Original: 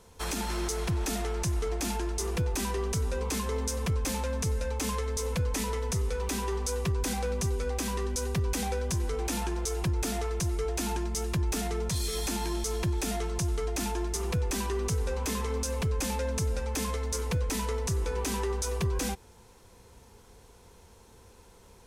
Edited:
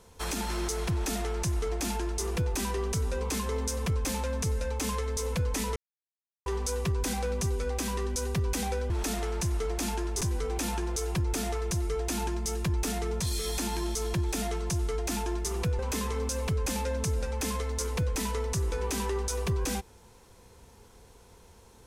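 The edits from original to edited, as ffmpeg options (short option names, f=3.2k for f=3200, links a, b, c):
-filter_complex "[0:a]asplit=6[a][b][c][d][e][f];[a]atrim=end=5.76,asetpts=PTS-STARTPTS,afade=t=out:st=5.756:d=0.004:c=hsin[g];[b]atrim=start=5.76:end=6.46,asetpts=PTS-STARTPTS,volume=0[h];[c]atrim=start=6.46:end=8.902,asetpts=PTS-STARTPTS,afade=t=in:d=0.004:c=hsin[i];[d]atrim=start=0.918:end=2.232[j];[e]atrim=start=8.898:end=14.482[k];[f]atrim=start=15.128[l];[g][h][i]concat=n=3:v=0:a=1[m];[m][j]acrossfade=d=0.004:c1=hsin:c2=hsin[n];[n][k]acrossfade=d=0.004:c1=hsin:c2=hsin[o];[o][l]acrossfade=d=0.004:c1=hsin:c2=hsin"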